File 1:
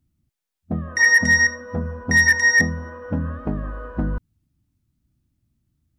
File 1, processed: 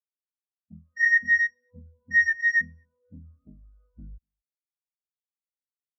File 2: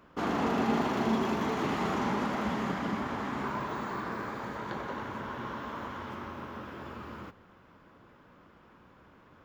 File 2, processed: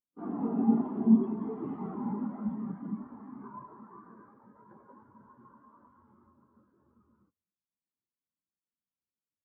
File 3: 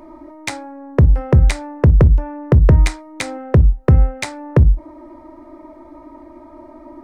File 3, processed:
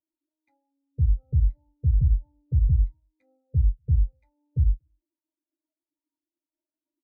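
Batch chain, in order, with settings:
one diode to ground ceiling -12.5 dBFS; echo 0.239 s -19 dB; spectral expander 2.5:1; normalise peaks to -12 dBFS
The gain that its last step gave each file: -3.0, +5.0, -8.5 dB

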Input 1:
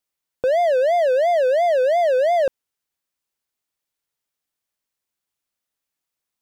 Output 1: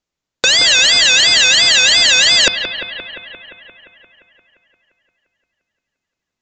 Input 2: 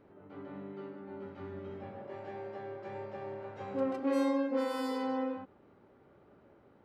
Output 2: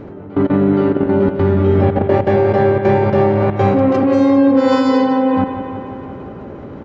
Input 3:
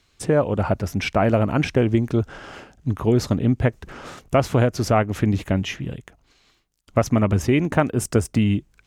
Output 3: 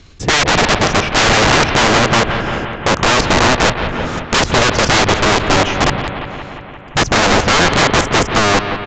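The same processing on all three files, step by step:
low shelf 420 Hz +10 dB; level quantiser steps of 20 dB; wrapped overs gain 24 dB; analogue delay 0.174 s, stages 4096, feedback 71%, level -9 dB; downsampling 16000 Hz; normalise peaks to -1.5 dBFS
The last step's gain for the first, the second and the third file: +20.5, +27.5, +17.5 dB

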